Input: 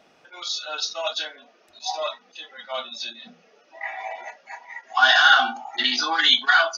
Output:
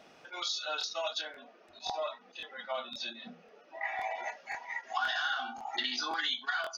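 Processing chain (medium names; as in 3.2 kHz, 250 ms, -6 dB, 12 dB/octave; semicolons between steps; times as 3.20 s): 1.21–3.85 s: low-pass 1.9 kHz 6 dB/octave; compression 6:1, threshold -32 dBFS, peak gain reduction 19.5 dB; crackling interface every 0.53 s, samples 1024, repeat, from 0.79 s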